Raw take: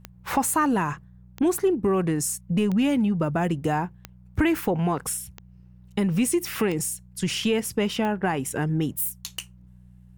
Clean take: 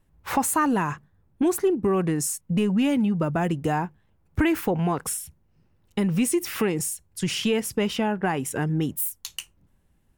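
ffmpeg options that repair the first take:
-af "adeclick=t=4,bandreject=f=61.1:t=h:w=4,bandreject=f=122.2:t=h:w=4,bandreject=f=183.3:t=h:w=4"

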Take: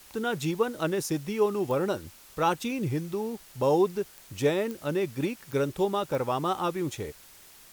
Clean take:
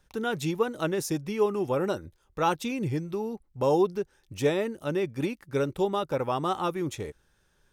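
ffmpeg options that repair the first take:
-af "adeclick=t=4,afftdn=nr=14:nf=-52"

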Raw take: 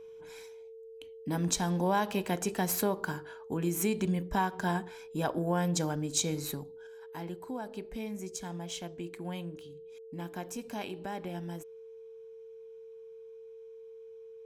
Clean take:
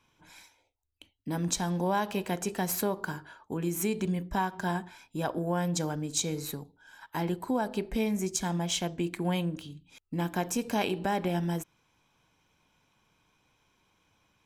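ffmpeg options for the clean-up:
-af "bandreject=f=450:w=30,asetnsamples=n=441:p=0,asendcmd='6.87 volume volume 9.5dB',volume=0dB"

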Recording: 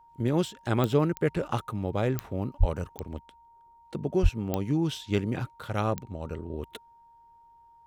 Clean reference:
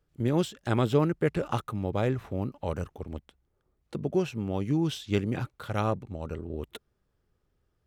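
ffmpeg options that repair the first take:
-filter_complex "[0:a]adeclick=t=4,bandreject=f=930:w=30,asplit=3[a][b][c];[a]afade=t=out:st=2.59:d=0.02[d];[b]highpass=f=140:w=0.5412,highpass=f=140:w=1.3066,afade=t=in:st=2.59:d=0.02,afade=t=out:st=2.71:d=0.02[e];[c]afade=t=in:st=2.71:d=0.02[f];[d][e][f]amix=inputs=3:normalize=0,asplit=3[g][h][i];[g]afade=t=out:st=4.22:d=0.02[j];[h]highpass=f=140:w=0.5412,highpass=f=140:w=1.3066,afade=t=in:st=4.22:d=0.02,afade=t=out:st=4.34:d=0.02[k];[i]afade=t=in:st=4.34:d=0.02[l];[j][k][l]amix=inputs=3:normalize=0"

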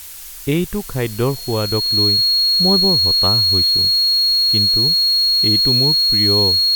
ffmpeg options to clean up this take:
-af "bandreject=f=4.3k:w=30,afftdn=nr=30:nf=-30"

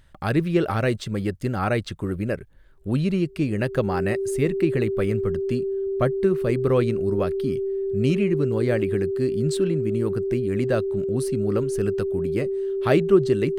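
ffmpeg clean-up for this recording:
-af "bandreject=f=390:w=30"

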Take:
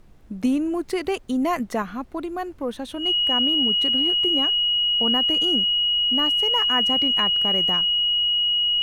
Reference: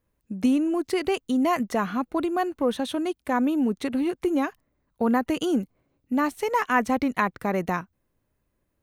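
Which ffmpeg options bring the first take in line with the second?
-af "bandreject=f=2.9k:w=30,agate=range=-21dB:threshold=-31dB,asetnsamples=n=441:p=0,asendcmd='1.82 volume volume 4dB',volume=0dB"

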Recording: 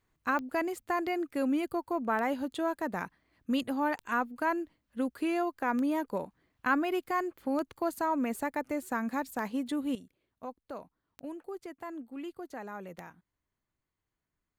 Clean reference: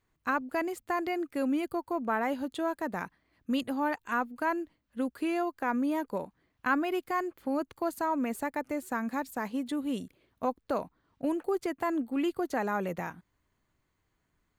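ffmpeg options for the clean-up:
-af "adeclick=t=4,asetnsamples=n=441:p=0,asendcmd='9.95 volume volume 11dB',volume=0dB"

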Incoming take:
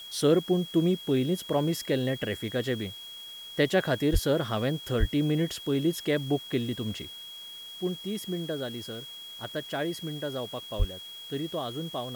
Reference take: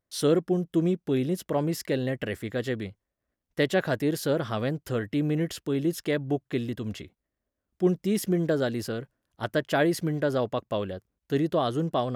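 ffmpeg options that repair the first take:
-filter_complex "[0:a]bandreject=f=3.3k:w=30,asplit=3[a][b][c];[a]afade=t=out:st=4.12:d=0.02[d];[b]highpass=f=140:w=0.5412,highpass=f=140:w=1.3066,afade=t=in:st=4.12:d=0.02,afade=t=out:st=4.24:d=0.02[e];[c]afade=t=in:st=4.24:d=0.02[f];[d][e][f]amix=inputs=3:normalize=0,asplit=3[g][h][i];[g]afade=t=out:st=4.99:d=0.02[j];[h]highpass=f=140:w=0.5412,highpass=f=140:w=1.3066,afade=t=in:st=4.99:d=0.02,afade=t=out:st=5.11:d=0.02[k];[i]afade=t=in:st=5.11:d=0.02[l];[j][k][l]amix=inputs=3:normalize=0,asplit=3[m][n][o];[m]afade=t=out:st=10.78:d=0.02[p];[n]highpass=f=140:w=0.5412,highpass=f=140:w=1.3066,afade=t=in:st=10.78:d=0.02,afade=t=out:st=10.9:d=0.02[q];[o]afade=t=in:st=10.9:d=0.02[r];[p][q][r]amix=inputs=3:normalize=0,afwtdn=0.0022,asetnsamples=n=441:p=0,asendcmd='7.1 volume volume 8dB',volume=0dB"

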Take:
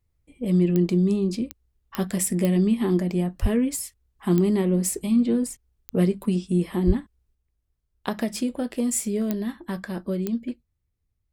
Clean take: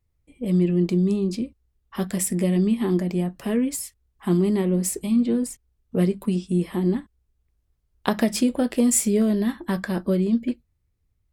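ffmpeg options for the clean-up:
-filter_complex "[0:a]adeclick=t=4,asplit=3[a][b][c];[a]afade=t=out:st=3.41:d=0.02[d];[b]highpass=f=140:w=0.5412,highpass=f=140:w=1.3066,afade=t=in:st=3.41:d=0.02,afade=t=out:st=3.53:d=0.02[e];[c]afade=t=in:st=3.53:d=0.02[f];[d][e][f]amix=inputs=3:normalize=0,asplit=3[g][h][i];[g]afade=t=out:st=6.86:d=0.02[j];[h]highpass=f=140:w=0.5412,highpass=f=140:w=1.3066,afade=t=in:st=6.86:d=0.02,afade=t=out:st=6.98:d=0.02[k];[i]afade=t=in:st=6.98:d=0.02[l];[j][k][l]amix=inputs=3:normalize=0,asetnsamples=n=441:p=0,asendcmd='7.35 volume volume 5.5dB',volume=0dB"

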